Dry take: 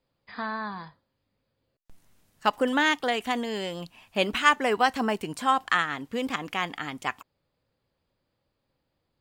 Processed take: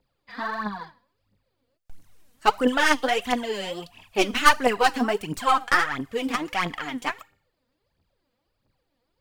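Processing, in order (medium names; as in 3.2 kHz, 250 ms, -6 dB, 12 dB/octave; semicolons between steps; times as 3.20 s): tracing distortion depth 0.099 ms; feedback comb 100 Hz, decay 0.52 s, harmonics all, mix 40%; phaser 1.5 Hz, delay 4.4 ms, feedback 70%; trim +3.5 dB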